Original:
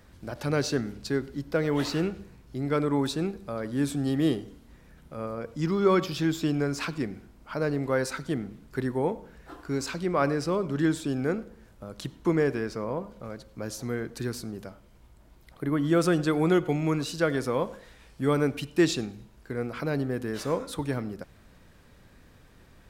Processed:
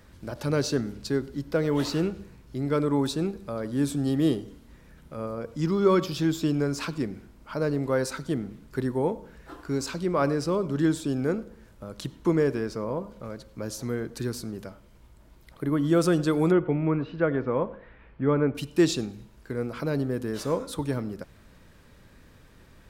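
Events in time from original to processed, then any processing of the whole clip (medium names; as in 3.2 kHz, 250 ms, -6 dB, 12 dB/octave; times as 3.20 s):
16.51–18.55 s: low-pass 2.4 kHz 24 dB/octave
whole clip: band-stop 740 Hz, Q 12; dynamic bell 2 kHz, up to -5 dB, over -48 dBFS, Q 1.2; trim +1.5 dB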